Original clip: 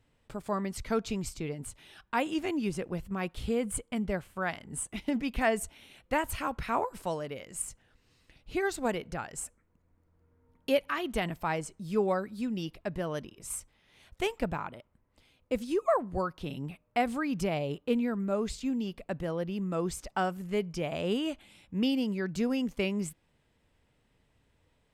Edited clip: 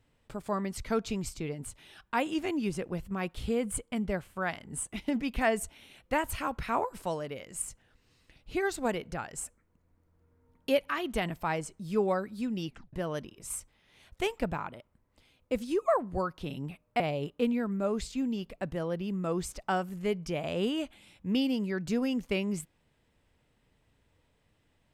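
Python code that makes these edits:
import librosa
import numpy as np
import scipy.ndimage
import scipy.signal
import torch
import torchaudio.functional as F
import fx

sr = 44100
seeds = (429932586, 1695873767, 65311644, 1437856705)

y = fx.edit(x, sr, fx.tape_stop(start_s=12.67, length_s=0.26),
    fx.cut(start_s=17.0, length_s=0.48), tone=tone)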